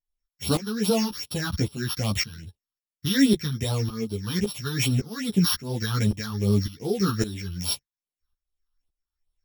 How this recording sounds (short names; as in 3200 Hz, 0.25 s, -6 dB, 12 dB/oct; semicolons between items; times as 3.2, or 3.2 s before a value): a buzz of ramps at a fixed pitch in blocks of 8 samples; phasing stages 6, 2.5 Hz, lowest notch 540–1900 Hz; tremolo saw up 1.8 Hz, depth 85%; a shimmering, thickened sound